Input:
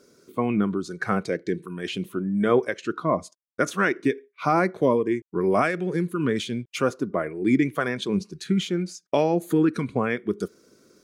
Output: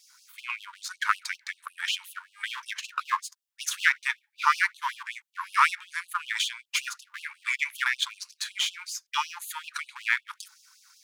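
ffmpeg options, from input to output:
-af "aeval=exprs='if(lt(val(0),0),0.447*val(0),val(0))':c=same,afftfilt=real='re*gte(b*sr/1024,840*pow(2700/840,0.5+0.5*sin(2*PI*5.3*pts/sr)))':imag='im*gte(b*sr/1024,840*pow(2700/840,0.5+0.5*sin(2*PI*5.3*pts/sr)))':win_size=1024:overlap=0.75,volume=8.5dB"

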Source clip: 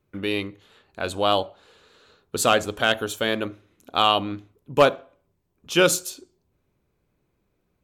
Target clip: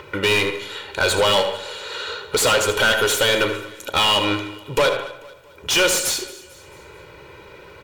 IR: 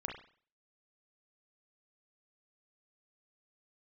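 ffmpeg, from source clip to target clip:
-filter_complex "[0:a]acrossover=split=4000[a][b];[a]acompressor=mode=upward:threshold=-41dB:ratio=2.5[c];[c][b]amix=inputs=2:normalize=0,equalizer=f=74:w=2:g=7.5,aecho=1:1:2.1:0.76,acompressor=threshold=-20dB:ratio=6,highshelf=f=3.5k:g=11,asplit=2[d][e];[e]highpass=f=720:p=1,volume=27dB,asoftclip=type=tanh:threshold=-5.5dB[f];[d][f]amix=inputs=2:normalize=0,lowpass=f=3.7k:p=1,volume=-6dB,aecho=1:1:222|444|666|888:0.1|0.048|0.023|0.0111,asplit=2[g][h];[1:a]atrim=start_sample=2205,adelay=77[i];[h][i]afir=irnorm=-1:irlink=0,volume=-8.5dB[j];[g][j]amix=inputs=2:normalize=0,volume=-3dB"

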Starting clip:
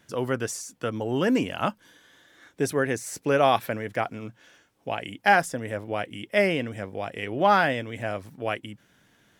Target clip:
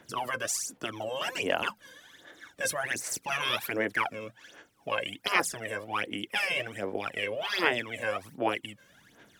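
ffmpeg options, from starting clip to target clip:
-filter_complex "[0:a]afftfilt=real='re*lt(hypot(re,im),0.178)':imag='im*lt(hypot(re,im),0.178)':win_size=1024:overlap=0.75,acrossover=split=300[a][b];[a]acompressor=threshold=-48dB:ratio=6[c];[b]aphaser=in_gain=1:out_gain=1:delay=1.9:decay=0.73:speed=1.3:type=sinusoidal[d];[c][d]amix=inputs=2:normalize=0"

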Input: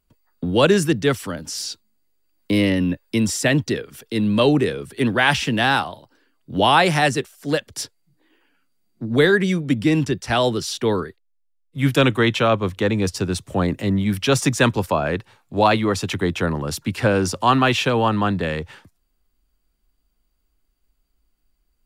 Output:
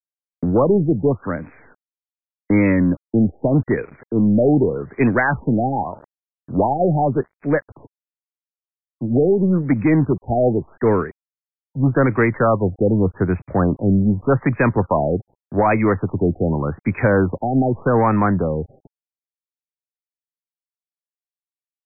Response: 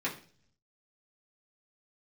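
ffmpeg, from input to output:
-filter_complex "[0:a]acrossover=split=7300[a][b];[a]alimiter=limit=-9.5dB:level=0:latency=1:release=67[c];[b]acompressor=threshold=-53dB:ratio=16[d];[c][d]amix=inputs=2:normalize=0,aeval=exprs='val(0)*gte(abs(val(0)),0.00631)':c=same,aeval=exprs='0.355*(cos(1*acos(clip(val(0)/0.355,-1,1)))-cos(1*PI/2))+0.0316*(cos(5*acos(clip(val(0)/0.355,-1,1)))-cos(5*PI/2))+0.0126*(cos(6*acos(clip(val(0)/0.355,-1,1)))-cos(6*PI/2))+0.0158*(cos(7*acos(clip(val(0)/0.355,-1,1)))-cos(7*PI/2))+0.00224*(cos(8*acos(clip(val(0)/0.355,-1,1)))-cos(8*PI/2))':c=same,aexciter=amount=1.2:drive=5.1:freq=6.8k,afftfilt=real='re*lt(b*sr/1024,780*pow(2600/780,0.5+0.5*sin(2*PI*0.84*pts/sr)))':imag='im*lt(b*sr/1024,780*pow(2600/780,0.5+0.5*sin(2*PI*0.84*pts/sr)))':win_size=1024:overlap=0.75,volume=3dB"

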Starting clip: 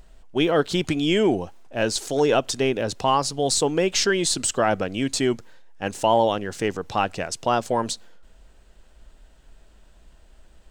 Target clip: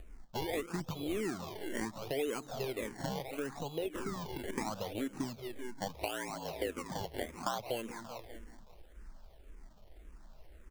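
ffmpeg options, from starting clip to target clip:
-filter_complex "[0:a]asplit=2[a][b];[b]aecho=0:1:164:0.133[c];[a][c]amix=inputs=2:normalize=0,asplit=3[d][e][f];[d]afade=t=out:st=5.88:d=0.02[g];[e]afreqshift=68,afade=t=in:st=5.88:d=0.02,afade=t=out:st=7.58:d=0.02[h];[f]afade=t=in:st=7.58:d=0.02[i];[g][h][i]amix=inputs=3:normalize=0,asplit=2[j][k];[k]adelay=193,lowpass=f=2.1k:p=1,volume=-16dB,asplit=2[l][m];[m]adelay=193,lowpass=f=2.1k:p=1,volume=0.51,asplit=2[n][o];[o]adelay=193,lowpass=f=2.1k:p=1,volume=0.51,asplit=2[p][q];[q]adelay=193,lowpass=f=2.1k:p=1,volume=0.51,asplit=2[r][s];[s]adelay=193,lowpass=f=2.1k:p=1,volume=0.51[t];[l][n][p][r][t]amix=inputs=5:normalize=0[u];[j][u]amix=inputs=2:normalize=0,aresample=8000,aresample=44100,acompressor=threshold=-32dB:ratio=6,acrusher=samples=24:mix=1:aa=0.000001:lfo=1:lforange=24:lforate=0.74,asettb=1/sr,asplit=3[v][w][x];[v]atrim=end=3.274[y];[w]atrim=start=3.27:end=4.39,asetpts=PTS-STARTPTS,afade=t=in:d=0.004:c=qsin,afade=t=out:st=1.116:d=0.004:c=qsin,deesser=0.75[z];[x]atrim=start=4.386[aa];[y][z]acrossfade=d=0.004:c1=hsin:c2=qsin[ab];[ab][aa]acrossfade=d=0.004:c1=qsin:c2=hsin,asplit=2[ac][ad];[ad]afreqshift=-1.8[ae];[ac][ae]amix=inputs=2:normalize=1"

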